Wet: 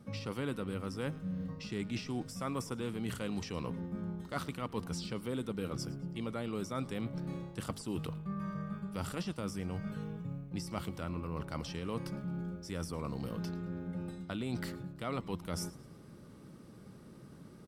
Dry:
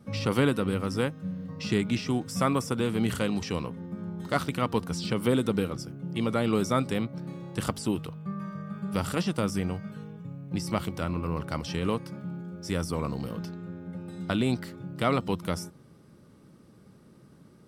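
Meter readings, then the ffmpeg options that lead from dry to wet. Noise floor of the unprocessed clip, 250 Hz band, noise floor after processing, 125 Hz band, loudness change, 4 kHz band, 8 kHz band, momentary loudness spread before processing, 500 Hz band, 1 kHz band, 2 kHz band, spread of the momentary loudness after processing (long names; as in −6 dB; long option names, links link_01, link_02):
−55 dBFS, −9.0 dB, −54 dBFS, −7.5 dB, −9.5 dB, −9.0 dB, −7.5 dB, 12 LU, −10.5 dB, −10.5 dB, −10.5 dB, 5 LU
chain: -filter_complex "[0:a]areverse,acompressor=threshold=-37dB:ratio=5,areverse,asplit=4[link_01][link_02][link_03][link_04];[link_02]adelay=109,afreqshift=-110,volume=-20.5dB[link_05];[link_03]adelay=218,afreqshift=-220,volume=-28.5dB[link_06];[link_04]adelay=327,afreqshift=-330,volume=-36.4dB[link_07];[link_01][link_05][link_06][link_07]amix=inputs=4:normalize=0,volume=1.5dB"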